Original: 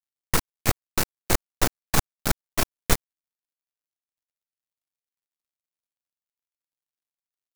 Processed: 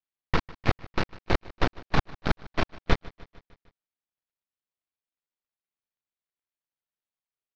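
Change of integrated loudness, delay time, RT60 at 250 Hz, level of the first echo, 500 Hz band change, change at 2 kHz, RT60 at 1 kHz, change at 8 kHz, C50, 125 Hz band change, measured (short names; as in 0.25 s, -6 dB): -3.5 dB, 0.151 s, none, -21.0 dB, -0.5 dB, -1.5 dB, none, -24.0 dB, none, 0.0 dB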